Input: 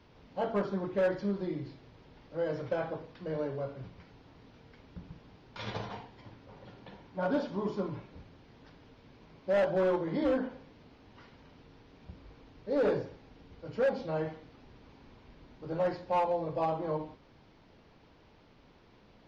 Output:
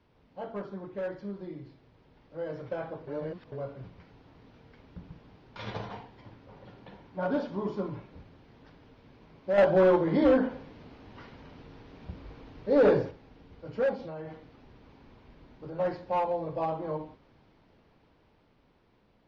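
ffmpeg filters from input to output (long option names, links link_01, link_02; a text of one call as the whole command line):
ffmpeg -i in.wav -filter_complex "[0:a]asettb=1/sr,asplit=3[link_01][link_02][link_03];[link_01]atrim=end=13.944[link_04];[link_02]atrim=start=13.94:end=15.79,asetpts=PTS-STARTPTS,afade=type=in:duration=0.004:curve=qsin,afade=type=out:start_time=1.846:duration=0.004:curve=qsin,acompressor=threshold=-37dB:ratio=6:attack=3.2:release=140:knee=1:detection=peak[link_05];[link_03]atrim=start=15.786[link_06];[link_04][link_05]acrossfade=duration=0.004:curve1=hsin:curve2=qsin[link_07];[link_07][link_06]acrossfade=duration=0.004:curve1=qsin:curve2=hsin,asplit=5[link_08][link_09][link_10][link_11][link_12];[link_08]atrim=end=3.072[link_13];[link_09]atrim=start=3.068:end=3.522,asetpts=PTS-STARTPTS,areverse[link_14];[link_10]atrim=start=3.518:end=9.582[link_15];[link_11]atrim=start=9.578:end=13.112,asetpts=PTS-STARTPTS,volume=6dB[link_16];[link_12]atrim=start=13.108[link_17];[link_13][link_14]acrossfade=duration=0.004:curve1=hsin:curve2=hsin[link_18];[link_18][link_15]acrossfade=duration=0.004:curve1=hsin:curve2=hsin[link_19];[link_19][link_16]acrossfade=duration=0.004:curve1=hsin:curve2=hsin[link_20];[link_20][link_17]acrossfade=duration=0.004:curve1=hsin:curve2=hsin,highshelf=frequency=5000:gain=-8.5,dynaudnorm=framelen=640:gausssize=9:maxgain=7.5dB,volume=-6.5dB" out.wav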